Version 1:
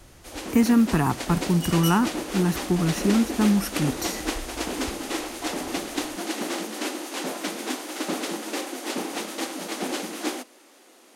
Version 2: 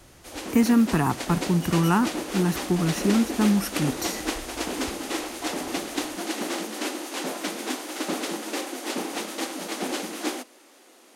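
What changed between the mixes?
second sound −8.0 dB
master: add low-shelf EQ 64 Hz −7.5 dB

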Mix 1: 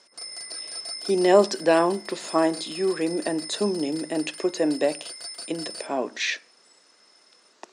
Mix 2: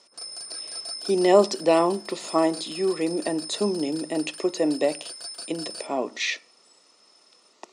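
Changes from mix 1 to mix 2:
speech: add Butterworth band-reject 1,600 Hz, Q 4.4
background: add Butterworth band-reject 2,000 Hz, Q 5.4

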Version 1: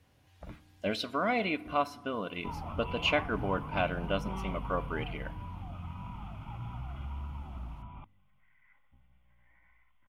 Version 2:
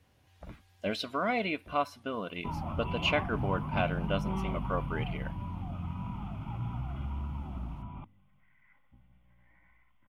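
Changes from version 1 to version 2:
background: add parametric band 220 Hz +7.5 dB 2.6 octaves
reverb: off

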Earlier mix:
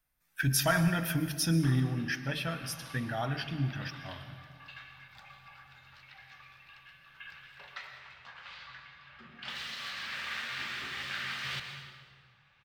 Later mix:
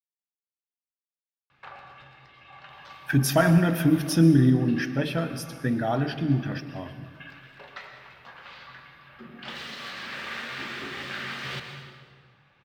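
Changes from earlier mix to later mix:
speech: entry +2.70 s
master: add parametric band 340 Hz +14 dB 2.5 octaves

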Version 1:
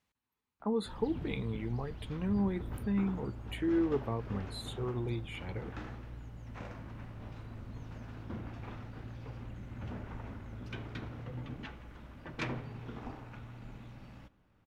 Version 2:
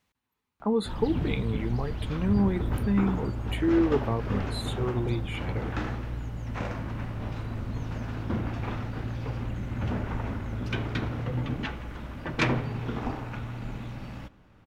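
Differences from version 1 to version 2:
speech +6.5 dB
background +12.0 dB

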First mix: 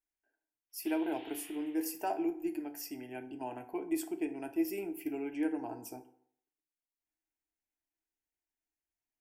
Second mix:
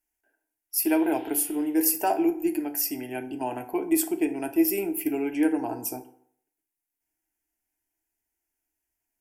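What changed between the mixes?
speech +10.0 dB
master: add parametric band 12,000 Hz +9.5 dB 1 octave

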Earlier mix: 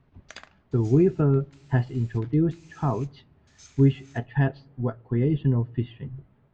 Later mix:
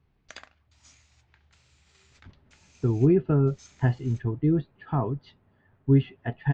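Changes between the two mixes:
speech: entry +2.10 s
reverb: off

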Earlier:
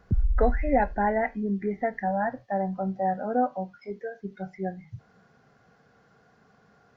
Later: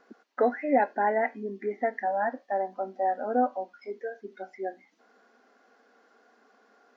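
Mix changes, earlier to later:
background −9.5 dB
master: add linear-phase brick-wall high-pass 220 Hz

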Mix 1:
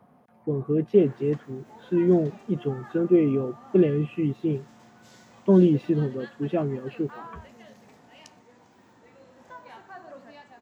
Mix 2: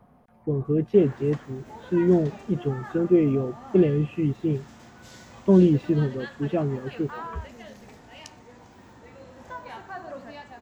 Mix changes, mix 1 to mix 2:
background +6.0 dB
master: remove high-pass filter 140 Hz 12 dB per octave

